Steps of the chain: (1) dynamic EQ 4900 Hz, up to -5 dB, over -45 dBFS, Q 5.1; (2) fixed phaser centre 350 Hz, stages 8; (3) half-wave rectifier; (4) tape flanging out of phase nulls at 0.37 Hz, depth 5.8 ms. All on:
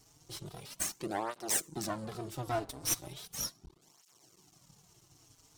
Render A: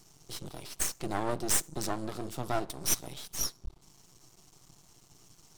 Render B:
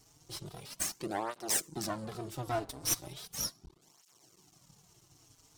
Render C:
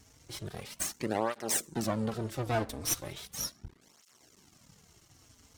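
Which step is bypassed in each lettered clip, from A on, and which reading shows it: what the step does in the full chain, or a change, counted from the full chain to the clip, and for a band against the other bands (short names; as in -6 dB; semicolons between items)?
4, crest factor change +2.0 dB; 1, 4 kHz band +1.5 dB; 2, 125 Hz band +3.5 dB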